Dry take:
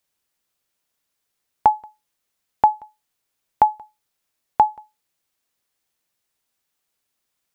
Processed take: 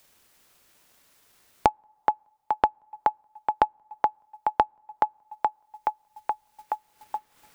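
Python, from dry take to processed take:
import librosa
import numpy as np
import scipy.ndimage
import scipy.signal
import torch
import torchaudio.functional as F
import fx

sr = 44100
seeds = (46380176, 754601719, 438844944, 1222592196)

y = fx.echo_thinned(x, sr, ms=424, feedback_pct=43, hz=260.0, wet_db=-9.5)
y = fx.rev_double_slope(y, sr, seeds[0], early_s=0.62, late_s=1.9, knee_db=-18, drr_db=15.5)
y = fx.rider(y, sr, range_db=4, speed_s=0.5)
y = fx.transient(y, sr, attack_db=9, sustain_db=-9)
y = fx.band_squash(y, sr, depth_pct=100)
y = F.gain(torch.from_numpy(y), -9.5).numpy()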